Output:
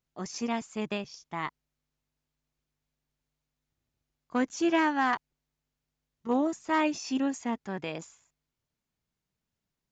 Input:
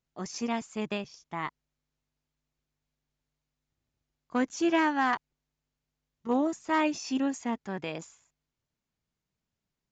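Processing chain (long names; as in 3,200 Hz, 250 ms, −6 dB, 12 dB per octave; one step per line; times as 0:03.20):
0:01.06–0:01.46: dynamic equaliser 4,900 Hz, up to +5 dB, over −57 dBFS, Q 1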